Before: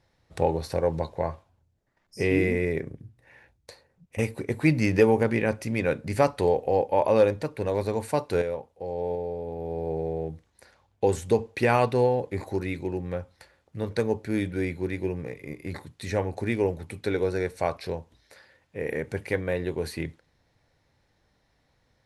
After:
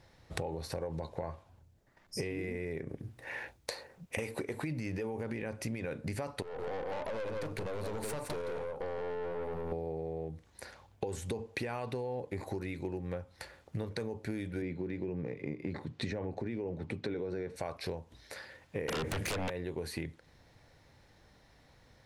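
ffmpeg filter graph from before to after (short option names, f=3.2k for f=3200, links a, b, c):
-filter_complex "[0:a]asettb=1/sr,asplit=3[a][b][c];[a]atrim=end=2.894[d];[b]atrim=start=2.89:end=4.62,asetpts=PTS-STARTPTS,afade=t=in:d=0.004:c=qsin,afade=t=out:st=1.726:d=0.004:c=qsin,acontrast=70,bass=f=250:g=-10,treble=f=4k:g=-1[e];[c]atrim=start=4.616[f];[d][e]acrossfade=d=0.004:c1=hsin:c2=qsin[g];[g][f]acrossfade=d=0.004:c1=qsin:c2=hsin,asettb=1/sr,asplit=3[h][i][j];[h]atrim=end=6.424[k];[i]atrim=start=6.42:end=9.72,asetpts=PTS-STARTPTS,afade=t=in:d=0.004:c=qsin,afade=t=out:st=3.296:d=0.004:c=qsin,aecho=1:1:167:0.355,atrim=end_sample=145530,acompressor=threshold=-30dB:ratio=6:attack=3.2:release=140:knee=1:detection=peak,aeval=exprs='(tanh(79.4*val(0)+0.5)-tanh(0.5))/79.4':c=same[l];[j]atrim=start=9.716[m];[k][l]acrossfade=d=0.004:c1=hsin:c2=qsin[n];[n][m]acrossfade=d=0.004:c1=qsin:c2=hsin,asettb=1/sr,asplit=3[o][p][q];[o]atrim=end=14.624[r];[p]atrim=start=14.62:end=17.56,asetpts=PTS-STARTPTS,afade=t=in:d=0.004:c=qsin,afade=t=out:st=2.936:d=0.004:c=qsin,highpass=140,lowpass=4.6k,lowshelf=f=480:g=9.5[s];[q]atrim=start=17.556[t];[r][s]acrossfade=d=0.004:c1=hsin:c2=qsin[u];[u][t]acrossfade=d=0.004:c1=qsin:c2=hsin,asettb=1/sr,asplit=3[v][w][x];[v]atrim=end=18.884[y];[w]atrim=start=18.88:end=19.5,asetpts=PTS-STARTPTS,afade=t=in:d=0.004:c=qsin,afade=t=out:st=0.616:d=0.004:c=qsin,bandreject=f=60:t=h:w=6,bandreject=f=120:t=h:w=6,bandreject=f=180:t=h:w=6,acompressor=threshold=-32dB:ratio=8:attack=3.2:release=140:knee=1:detection=peak,aeval=exprs='0.0841*sin(PI/2*7.08*val(0)/0.0841)':c=same[z];[x]atrim=start=19.496[aa];[y][z]acrossfade=d=0.004:c1=hsin:c2=qsin[ab];[ab][aa]acrossfade=d=0.004:c1=qsin:c2=hsin,alimiter=limit=-19dB:level=0:latency=1:release=41,acompressor=threshold=-40dB:ratio=16,volume=6.5dB"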